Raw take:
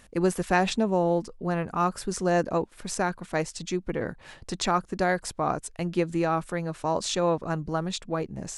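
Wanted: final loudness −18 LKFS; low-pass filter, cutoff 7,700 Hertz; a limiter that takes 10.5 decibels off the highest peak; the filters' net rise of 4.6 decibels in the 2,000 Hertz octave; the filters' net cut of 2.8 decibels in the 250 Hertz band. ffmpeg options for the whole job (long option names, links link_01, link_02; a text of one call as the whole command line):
ffmpeg -i in.wav -af "lowpass=7700,equalizer=frequency=250:width_type=o:gain=-5,equalizer=frequency=2000:width_type=o:gain=6,volume=12dB,alimiter=limit=-5dB:level=0:latency=1" out.wav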